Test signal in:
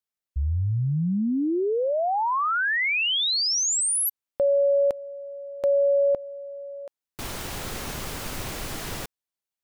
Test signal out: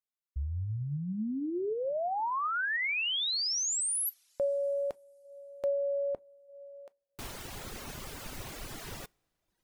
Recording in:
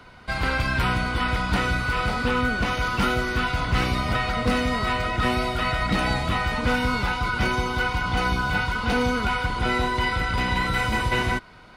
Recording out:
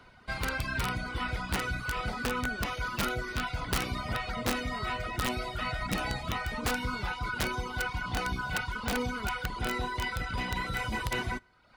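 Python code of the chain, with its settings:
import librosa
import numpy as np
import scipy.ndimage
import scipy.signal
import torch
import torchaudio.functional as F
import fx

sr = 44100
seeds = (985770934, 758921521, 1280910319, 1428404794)

y = fx.rev_double_slope(x, sr, seeds[0], early_s=0.32, late_s=3.2, knee_db=-19, drr_db=15.0)
y = fx.dereverb_blind(y, sr, rt60_s=0.81)
y = (np.mod(10.0 ** (15.0 / 20.0) * y + 1.0, 2.0) - 1.0) / 10.0 ** (15.0 / 20.0)
y = F.gain(torch.from_numpy(y), -7.5).numpy()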